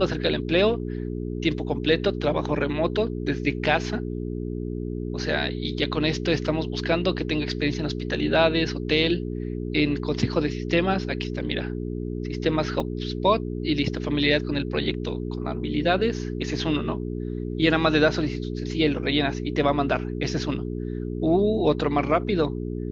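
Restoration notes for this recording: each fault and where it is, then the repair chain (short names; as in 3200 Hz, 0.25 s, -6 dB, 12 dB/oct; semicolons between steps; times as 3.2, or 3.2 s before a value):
hum 60 Hz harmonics 7 -30 dBFS
12.8 gap 2.9 ms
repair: de-hum 60 Hz, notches 7; interpolate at 12.8, 2.9 ms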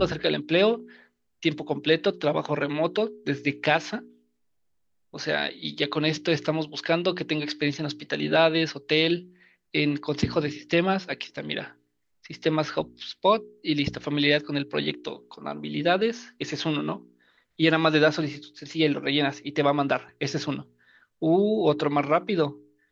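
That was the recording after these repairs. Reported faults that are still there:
none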